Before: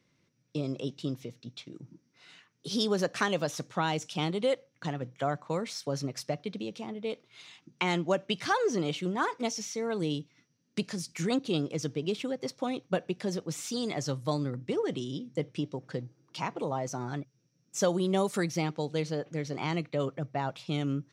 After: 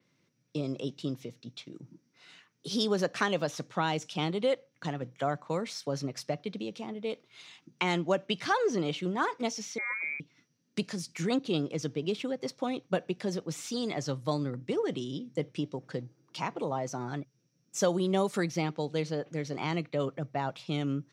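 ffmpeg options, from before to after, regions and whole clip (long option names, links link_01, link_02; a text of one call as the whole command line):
ffmpeg -i in.wav -filter_complex "[0:a]asettb=1/sr,asplit=3[link_01][link_02][link_03];[link_01]atrim=end=9.784[link_04];[link_02]atrim=start=9.78:end=10.2,asetpts=PTS-STARTPTS,afade=type=in:duration=0.004:curve=qsin,afade=type=out:start_time=0.416:duration=0.004:curve=qsin,aeval=exprs='val(0)+0.5*0.00376*sgn(val(0))':channel_layout=same,lowshelf=frequency=380:gain=-7.5,lowpass=frequency=2200:width_type=q:width=0.5098,lowpass=frequency=2200:width_type=q:width=0.6013,lowpass=frequency=2200:width_type=q:width=0.9,lowpass=frequency=2200:width_type=q:width=2.563,afreqshift=-2600[link_05];[link_03]atrim=start=10.196[link_06];[link_04][link_05]acrossfade=duration=0.004:curve1=hsin:curve2=qsin[link_07];[link_07][link_06]acrossfade=duration=0.004:curve1=qsin:curve2=hsin,highpass=110,adynamicequalizer=threshold=0.00251:dfrequency=6000:dqfactor=0.7:tfrequency=6000:tqfactor=0.7:attack=5:release=100:ratio=0.375:range=3.5:mode=cutabove:tftype=highshelf" out.wav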